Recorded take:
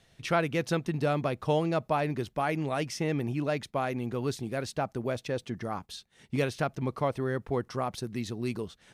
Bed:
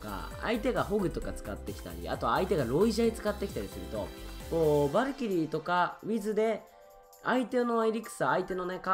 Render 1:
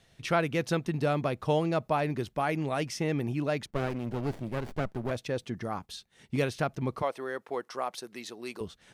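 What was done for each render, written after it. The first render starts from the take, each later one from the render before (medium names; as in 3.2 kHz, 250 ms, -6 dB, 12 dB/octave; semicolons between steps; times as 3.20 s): 3.66–5.11 s: sliding maximum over 33 samples; 7.02–8.61 s: high-pass 460 Hz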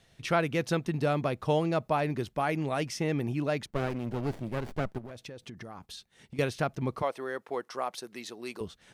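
4.98–6.39 s: compression 16:1, threshold -39 dBFS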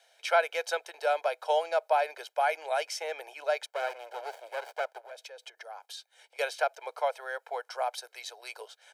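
steep high-pass 410 Hz 72 dB/octave; comb 1.3 ms, depth 75%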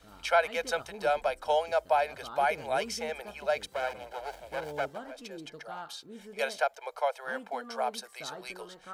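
add bed -15.5 dB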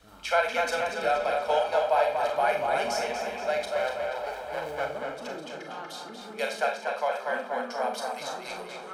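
tape echo 239 ms, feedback 68%, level -4 dB, low-pass 4.9 kHz; Schroeder reverb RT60 0.32 s, combs from 29 ms, DRR 3.5 dB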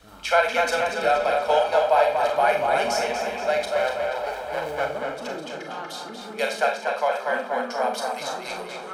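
trim +5 dB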